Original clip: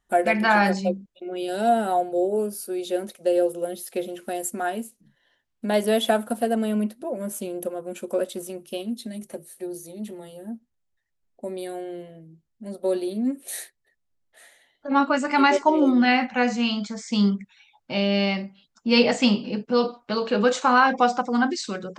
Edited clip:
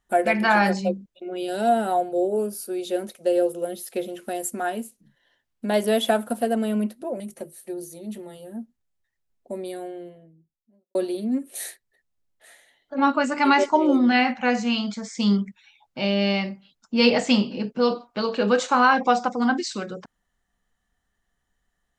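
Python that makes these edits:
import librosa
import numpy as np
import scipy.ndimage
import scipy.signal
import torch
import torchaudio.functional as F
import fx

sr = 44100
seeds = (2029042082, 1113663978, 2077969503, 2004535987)

y = fx.studio_fade_out(x, sr, start_s=11.45, length_s=1.43)
y = fx.edit(y, sr, fx.cut(start_s=7.2, length_s=1.93), tone=tone)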